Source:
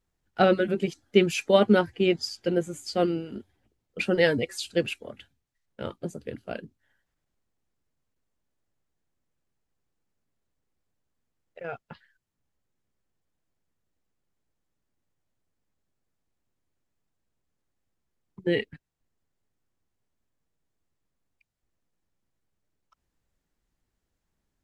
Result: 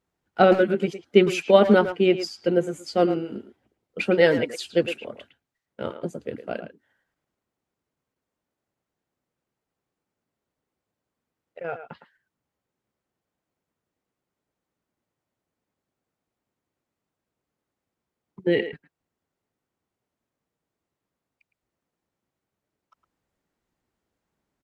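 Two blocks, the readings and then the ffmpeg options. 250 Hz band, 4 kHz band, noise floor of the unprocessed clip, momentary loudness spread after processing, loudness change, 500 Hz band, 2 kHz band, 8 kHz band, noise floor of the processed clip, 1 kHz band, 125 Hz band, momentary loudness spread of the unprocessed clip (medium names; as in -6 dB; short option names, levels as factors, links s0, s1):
+3.0 dB, +0.5 dB, -81 dBFS, 18 LU, +3.5 dB, +4.5 dB, +2.5 dB, -2.0 dB, under -85 dBFS, +4.5 dB, +1.5 dB, 18 LU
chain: -filter_complex "[0:a]highpass=f=220:p=1,highshelf=f=2600:g=-8.5,bandreject=f=1700:w=25,asplit=2[s0][s1];[s1]adelay=110,highpass=300,lowpass=3400,asoftclip=type=hard:threshold=0.133,volume=0.316[s2];[s0][s2]amix=inputs=2:normalize=0,volume=1.88"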